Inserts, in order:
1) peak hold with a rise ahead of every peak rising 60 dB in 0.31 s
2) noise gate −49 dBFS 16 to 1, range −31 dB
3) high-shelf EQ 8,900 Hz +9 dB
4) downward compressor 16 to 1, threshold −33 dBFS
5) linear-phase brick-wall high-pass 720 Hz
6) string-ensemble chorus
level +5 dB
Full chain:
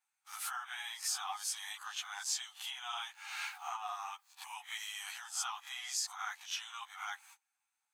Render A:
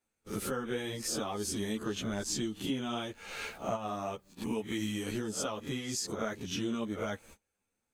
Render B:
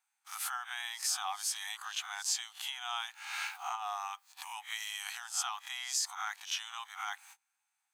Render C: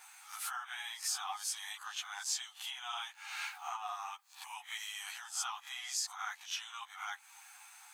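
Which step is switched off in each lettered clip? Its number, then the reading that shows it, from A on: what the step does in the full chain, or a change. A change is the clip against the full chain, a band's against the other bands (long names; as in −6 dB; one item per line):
5, change in crest factor −4.5 dB
6, change in integrated loudness +3.0 LU
2, change in momentary loudness spread +3 LU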